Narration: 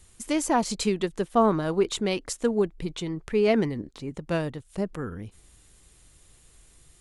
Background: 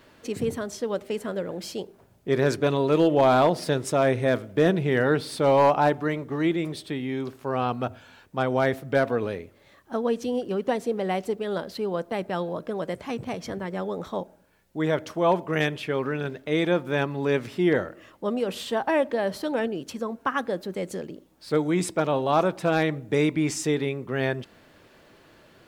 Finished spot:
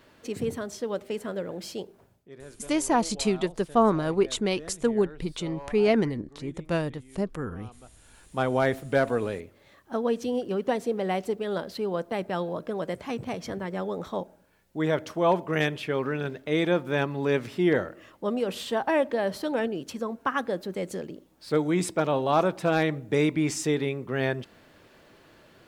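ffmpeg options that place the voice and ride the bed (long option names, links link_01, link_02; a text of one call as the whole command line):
ffmpeg -i stem1.wav -i stem2.wav -filter_complex "[0:a]adelay=2400,volume=0dB[link_01];[1:a]volume=20dB,afade=type=out:start_time=2.06:duration=0.23:silence=0.0891251,afade=type=in:start_time=7.94:duration=0.45:silence=0.0749894[link_02];[link_01][link_02]amix=inputs=2:normalize=0" out.wav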